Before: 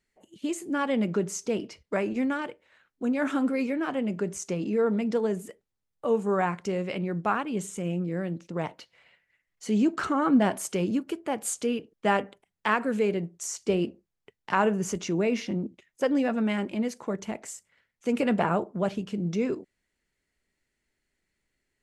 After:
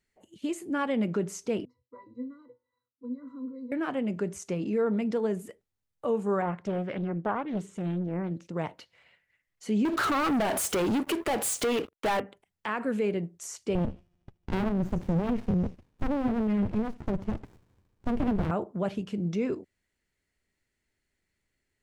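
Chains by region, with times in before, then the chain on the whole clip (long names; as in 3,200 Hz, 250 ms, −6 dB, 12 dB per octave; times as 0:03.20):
0:01.65–0:03.72: phaser with its sweep stopped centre 650 Hz, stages 6 + resonances in every octave B, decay 0.16 s + hum removal 182.1 Hz, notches 30
0:06.42–0:08.31: low-pass filter 1,900 Hz 6 dB per octave + highs frequency-modulated by the lows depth 0.52 ms
0:09.85–0:12.20: bass and treble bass −13 dB, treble +2 dB + downward compressor 2.5 to 1, threshold −34 dBFS + leveller curve on the samples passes 5
0:13.75–0:18.51: spectral tilt −4 dB per octave + delay with a high-pass on its return 76 ms, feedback 79%, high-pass 3,600 Hz, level −11 dB + windowed peak hold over 65 samples
whole clip: parametric band 89 Hz +6 dB 0.77 octaves; brickwall limiter −18 dBFS; dynamic equaliser 6,500 Hz, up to −5 dB, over −52 dBFS, Q 1; level −1.5 dB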